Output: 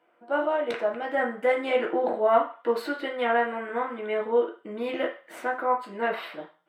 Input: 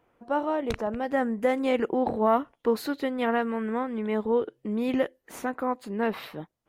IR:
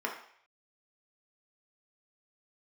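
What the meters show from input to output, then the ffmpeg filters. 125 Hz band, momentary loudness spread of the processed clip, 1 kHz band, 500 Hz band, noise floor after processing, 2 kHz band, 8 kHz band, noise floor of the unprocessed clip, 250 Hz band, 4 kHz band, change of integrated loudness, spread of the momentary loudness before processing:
under -10 dB, 8 LU, +2.0 dB, +2.0 dB, -65 dBFS, +5.0 dB, n/a, -77 dBFS, -7.0 dB, +2.0 dB, +0.5 dB, 6 LU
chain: -filter_complex "[1:a]atrim=start_sample=2205,asetrate=66150,aresample=44100[a];[0:a][a]afir=irnorm=-1:irlink=0"

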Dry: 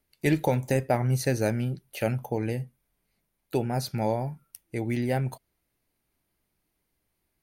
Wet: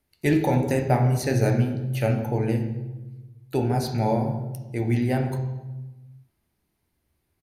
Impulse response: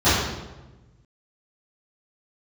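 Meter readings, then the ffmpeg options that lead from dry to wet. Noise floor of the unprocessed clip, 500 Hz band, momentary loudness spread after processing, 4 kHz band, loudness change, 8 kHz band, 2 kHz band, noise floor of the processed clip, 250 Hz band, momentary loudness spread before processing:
-79 dBFS, +2.5 dB, 14 LU, +1.5 dB, +4.0 dB, +0.5 dB, +2.0 dB, -75 dBFS, +5.0 dB, 9 LU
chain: -filter_complex "[0:a]asplit=2[a][b];[1:a]atrim=start_sample=2205,lowpass=8.8k[c];[b][c]afir=irnorm=-1:irlink=0,volume=-25dB[d];[a][d]amix=inputs=2:normalize=0,aresample=32000,aresample=44100"

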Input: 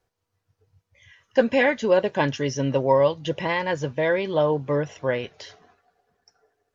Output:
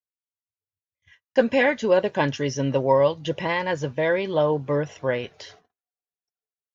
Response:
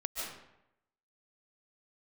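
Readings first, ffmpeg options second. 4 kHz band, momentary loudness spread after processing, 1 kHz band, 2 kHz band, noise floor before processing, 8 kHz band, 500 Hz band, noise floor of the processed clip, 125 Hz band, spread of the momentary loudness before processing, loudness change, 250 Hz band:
0.0 dB, 8 LU, 0.0 dB, 0.0 dB, -80 dBFS, n/a, 0.0 dB, under -85 dBFS, 0.0 dB, 8 LU, 0.0 dB, 0.0 dB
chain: -af "agate=range=-38dB:threshold=-51dB:ratio=16:detection=peak"

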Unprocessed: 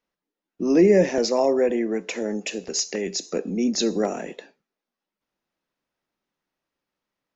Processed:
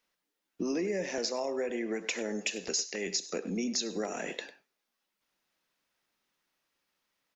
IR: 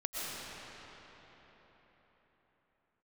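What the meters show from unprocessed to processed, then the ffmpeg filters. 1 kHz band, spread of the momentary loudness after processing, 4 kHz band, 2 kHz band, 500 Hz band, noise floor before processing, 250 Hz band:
-10.5 dB, 6 LU, -5.0 dB, -4.0 dB, -13.0 dB, under -85 dBFS, -12.5 dB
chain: -filter_complex "[0:a]tiltshelf=f=1.1k:g=-5.5,acompressor=threshold=-32dB:ratio=8,asplit=2[a][b];[b]adelay=100,highpass=300,lowpass=3.4k,asoftclip=type=hard:threshold=-27dB,volume=-13dB[c];[a][c]amix=inputs=2:normalize=0,volume=2dB"

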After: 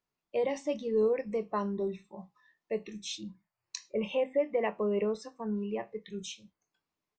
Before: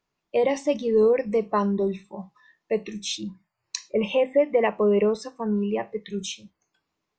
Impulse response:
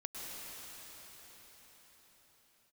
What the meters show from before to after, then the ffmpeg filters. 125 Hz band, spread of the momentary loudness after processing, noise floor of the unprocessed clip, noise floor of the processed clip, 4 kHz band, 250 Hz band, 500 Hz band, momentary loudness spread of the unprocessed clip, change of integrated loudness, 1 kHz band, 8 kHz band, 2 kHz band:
n/a, 15 LU, -81 dBFS, under -85 dBFS, -9.0 dB, -9.0 dB, -8.5 dB, 15 LU, -8.5 dB, -9.0 dB, -9.0 dB, -9.0 dB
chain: -filter_complex "[0:a]asplit=2[a][b];[b]adelay=23,volume=-14dB[c];[a][c]amix=inputs=2:normalize=0,volume=-9dB"

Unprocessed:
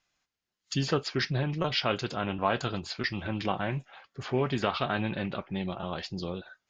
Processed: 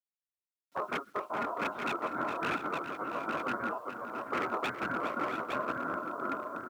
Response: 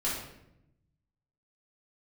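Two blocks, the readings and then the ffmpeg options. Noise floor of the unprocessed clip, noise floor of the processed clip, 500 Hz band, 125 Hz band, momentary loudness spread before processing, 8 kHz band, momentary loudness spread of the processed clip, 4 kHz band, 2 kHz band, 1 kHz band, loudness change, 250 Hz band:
under -85 dBFS, under -85 dBFS, -5.0 dB, -19.0 dB, 7 LU, n/a, 4 LU, -13.0 dB, -1.0 dB, +1.0 dB, -3.5 dB, -6.5 dB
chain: -af "afftfilt=real='hypot(re,im)*cos(2*PI*random(0))':imag='hypot(re,im)*sin(2*PI*random(1))':win_size=512:overlap=0.75,flanger=delay=3.2:depth=9.4:regen=29:speed=0.77:shape=triangular,lowpass=f=550:t=q:w=4.9,aeval=exprs='0.0335*(abs(mod(val(0)/0.0335+3,4)-2)-1)':c=same,dynaudnorm=f=140:g=5:m=6dB,aecho=1:1:412|668|698|862:0.316|0.237|0.224|0.531,adynamicequalizer=threshold=0.00316:dfrequency=260:dqfactor=6.7:tfrequency=260:tqfactor=6.7:attack=5:release=100:ratio=0.375:range=1.5:mode=boostabove:tftype=bell,aeval=exprs='val(0)*sin(2*PI*830*n/s)':c=same,lowshelf=f=350:g=-5,acrusher=bits=10:mix=0:aa=0.000001,highpass=110"

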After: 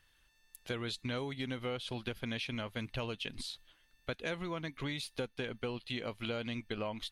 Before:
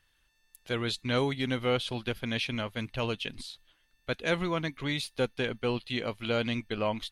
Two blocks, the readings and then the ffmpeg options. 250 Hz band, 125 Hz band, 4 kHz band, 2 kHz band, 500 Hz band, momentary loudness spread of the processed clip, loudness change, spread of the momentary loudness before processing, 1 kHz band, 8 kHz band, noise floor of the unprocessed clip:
-7.5 dB, -7.0 dB, -6.5 dB, -7.5 dB, -8.5 dB, 5 LU, -8.0 dB, 7 LU, -8.5 dB, -5.0 dB, -71 dBFS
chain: -af "acompressor=threshold=-36dB:ratio=6,volume=1dB"

